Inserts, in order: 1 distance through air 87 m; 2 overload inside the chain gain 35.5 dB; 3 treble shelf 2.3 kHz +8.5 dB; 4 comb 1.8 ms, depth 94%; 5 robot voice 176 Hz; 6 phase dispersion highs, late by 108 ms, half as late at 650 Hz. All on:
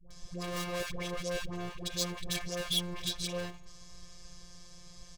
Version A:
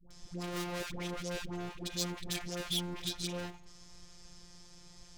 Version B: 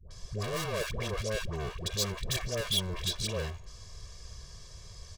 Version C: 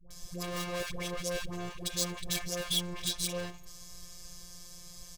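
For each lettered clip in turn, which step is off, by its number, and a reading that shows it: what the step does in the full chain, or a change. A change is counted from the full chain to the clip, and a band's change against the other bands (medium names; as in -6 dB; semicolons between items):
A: 4, 250 Hz band +3.0 dB; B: 5, 125 Hz band +4.5 dB; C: 1, 8 kHz band +4.0 dB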